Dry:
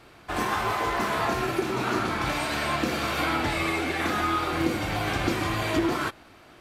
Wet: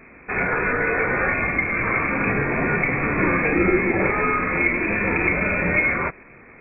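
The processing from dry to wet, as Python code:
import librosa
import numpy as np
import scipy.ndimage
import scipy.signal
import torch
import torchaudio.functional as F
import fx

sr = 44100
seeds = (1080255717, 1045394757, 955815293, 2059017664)

y = fx.freq_invert(x, sr, carrier_hz=2500)
y = fx.low_shelf_res(y, sr, hz=640.0, db=8.0, q=1.5)
y = y * librosa.db_to_amplitude(4.5)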